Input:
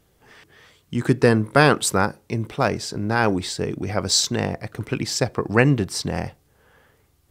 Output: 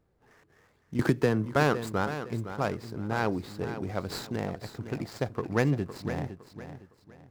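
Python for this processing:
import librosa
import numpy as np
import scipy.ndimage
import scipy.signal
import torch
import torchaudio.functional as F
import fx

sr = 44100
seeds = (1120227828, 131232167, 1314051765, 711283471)

y = scipy.ndimage.median_filter(x, 15, mode='constant')
y = fx.echo_feedback(y, sr, ms=510, feedback_pct=32, wet_db=-11.0)
y = fx.band_squash(y, sr, depth_pct=100, at=(0.99, 1.56))
y = F.gain(torch.from_numpy(y), -8.5).numpy()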